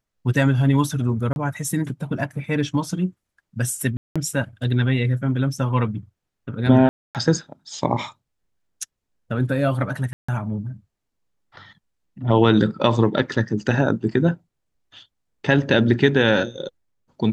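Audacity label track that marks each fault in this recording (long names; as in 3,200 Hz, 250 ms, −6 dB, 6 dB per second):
1.330000	1.360000	drop-out 31 ms
3.970000	4.160000	drop-out 186 ms
6.890000	7.150000	drop-out 258 ms
10.130000	10.290000	drop-out 155 ms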